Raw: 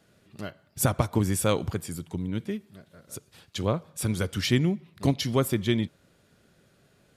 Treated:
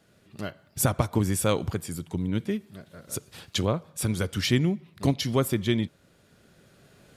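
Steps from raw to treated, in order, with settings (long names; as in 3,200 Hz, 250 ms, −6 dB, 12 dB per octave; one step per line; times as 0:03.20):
camcorder AGC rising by 5.4 dB per second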